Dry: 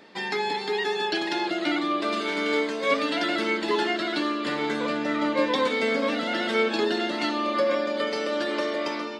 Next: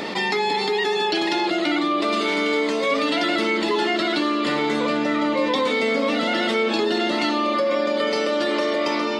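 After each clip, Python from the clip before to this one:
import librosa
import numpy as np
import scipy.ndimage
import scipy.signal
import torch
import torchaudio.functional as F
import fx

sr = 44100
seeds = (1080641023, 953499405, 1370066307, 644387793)

y = fx.notch(x, sr, hz=1600.0, q=7.2)
y = fx.env_flatten(y, sr, amount_pct=70)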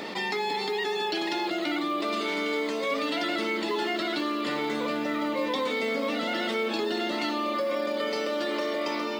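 y = fx.peak_eq(x, sr, hz=72.0, db=-7.0, octaves=1.4)
y = fx.quant_float(y, sr, bits=4)
y = F.gain(torch.from_numpy(y), -7.0).numpy()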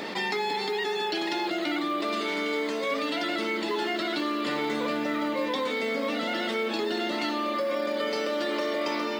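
y = fx.rider(x, sr, range_db=10, speed_s=0.5)
y = fx.dmg_noise_band(y, sr, seeds[0], low_hz=1400.0, high_hz=2200.0, level_db=-51.0)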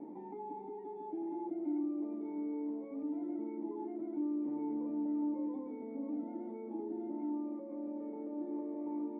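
y = fx.formant_cascade(x, sr, vowel='u')
y = F.gain(torch.from_numpy(y), -3.0).numpy()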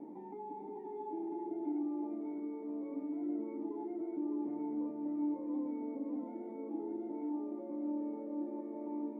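y = x + 10.0 ** (-4.5 / 20.0) * np.pad(x, (int(601 * sr / 1000.0), 0))[:len(x)]
y = F.gain(torch.from_numpy(y), -1.0).numpy()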